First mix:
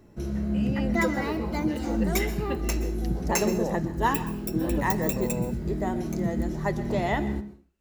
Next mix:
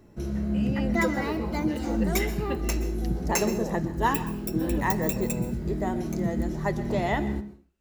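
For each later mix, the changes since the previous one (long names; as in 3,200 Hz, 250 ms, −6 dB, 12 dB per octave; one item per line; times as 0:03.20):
second voice −5.0 dB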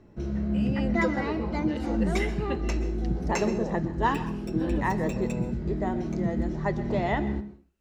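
background: add high-frequency loss of the air 120 metres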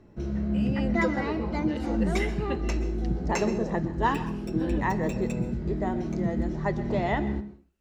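second voice: add Gaussian smoothing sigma 8.2 samples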